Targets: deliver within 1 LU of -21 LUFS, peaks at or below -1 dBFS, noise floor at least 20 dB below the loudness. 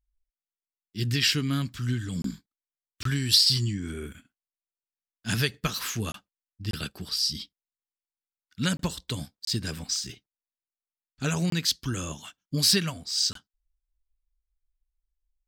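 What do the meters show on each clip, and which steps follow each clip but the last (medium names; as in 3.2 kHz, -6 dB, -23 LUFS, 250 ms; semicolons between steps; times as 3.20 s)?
dropouts 8; longest dropout 23 ms; loudness -27.0 LUFS; peak level -5.0 dBFS; loudness target -21.0 LUFS
-> interpolate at 2.22/3.03/6.12/6.71/8.77/9.45/11.50/13.33 s, 23 ms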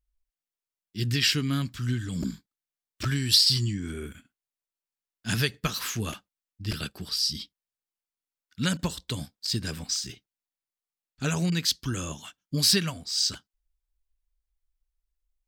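dropouts 0; loudness -27.0 LUFS; peak level -5.0 dBFS; loudness target -21.0 LUFS
-> trim +6 dB; peak limiter -1 dBFS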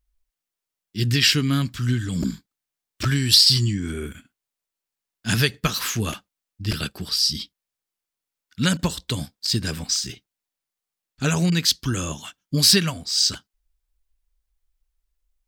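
loudness -21.0 LUFS; peak level -1.0 dBFS; noise floor -87 dBFS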